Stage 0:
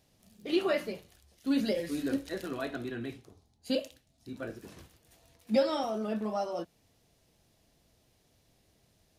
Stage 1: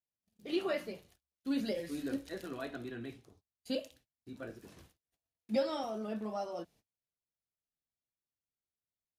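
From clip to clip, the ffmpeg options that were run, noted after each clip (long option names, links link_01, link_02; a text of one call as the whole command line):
ffmpeg -i in.wav -af "agate=range=-31dB:threshold=-57dB:ratio=16:detection=peak,volume=-5.5dB" out.wav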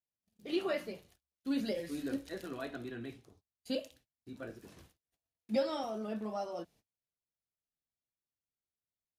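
ffmpeg -i in.wav -af anull out.wav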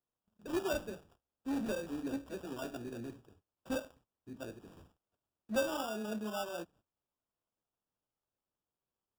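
ffmpeg -i in.wav -filter_complex "[0:a]acrossover=split=410[link_01][link_02];[link_01]asoftclip=type=hard:threshold=-34.5dB[link_03];[link_02]acrusher=samples=21:mix=1:aa=0.000001[link_04];[link_03][link_04]amix=inputs=2:normalize=0" out.wav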